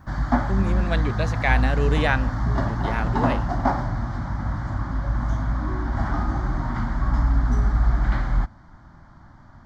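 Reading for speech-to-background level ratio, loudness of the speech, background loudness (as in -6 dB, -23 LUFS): -2.5 dB, -27.0 LUFS, -24.5 LUFS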